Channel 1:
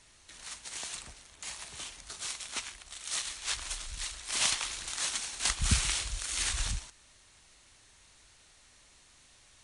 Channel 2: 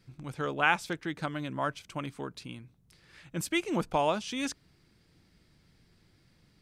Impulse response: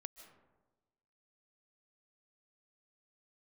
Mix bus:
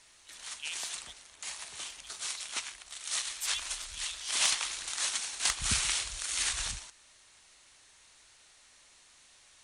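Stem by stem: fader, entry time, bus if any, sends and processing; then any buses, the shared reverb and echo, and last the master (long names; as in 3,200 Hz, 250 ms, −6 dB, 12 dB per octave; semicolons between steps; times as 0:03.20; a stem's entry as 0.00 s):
+1.0 dB, 0.00 s, no send, no processing
0.0 dB, 0.00 s, muted 0:01.15–0:01.85, no send, Butterworth high-pass 3,000 Hz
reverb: not used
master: low-shelf EQ 290 Hz −11.5 dB; hard clipping −15.5 dBFS, distortion −30 dB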